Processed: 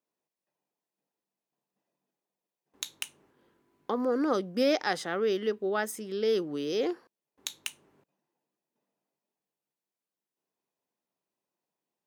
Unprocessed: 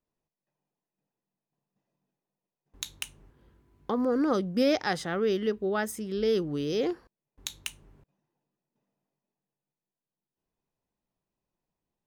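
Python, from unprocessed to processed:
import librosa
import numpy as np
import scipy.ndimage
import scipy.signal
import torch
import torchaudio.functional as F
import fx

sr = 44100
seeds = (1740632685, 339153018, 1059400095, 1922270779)

y = scipy.signal.sosfilt(scipy.signal.butter(2, 270.0, 'highpass', fs=sr, output='sos'), x)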